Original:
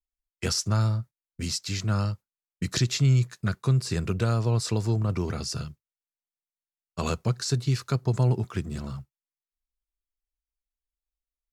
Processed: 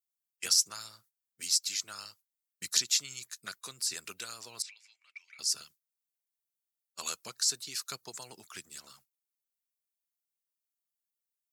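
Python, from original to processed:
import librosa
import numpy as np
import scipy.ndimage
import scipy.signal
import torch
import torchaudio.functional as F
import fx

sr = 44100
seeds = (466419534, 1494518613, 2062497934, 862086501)

y = fx.hpss(x, sr, part='harmonic', gain_db=-12)
y = fx.ladder_bandpass(y, sr, hz=2400.0, resonance_pct=80, at=(4.62, 5.39))
y = np.diff(y, prepend=0.0)
y = y * 10.0 ** (6.5 / 20.0)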